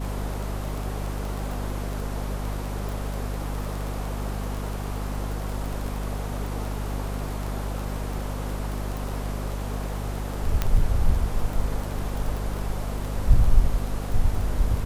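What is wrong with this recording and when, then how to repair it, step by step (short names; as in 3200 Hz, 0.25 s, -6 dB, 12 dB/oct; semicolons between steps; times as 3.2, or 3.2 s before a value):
crackle 21/s -28 dBFS
hum 50 Hz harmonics 5 -30 dBFS
2.89 pop
8.97 pop
10.62 pop -9 dBFS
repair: de-click; de-hum 50 Hz, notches 5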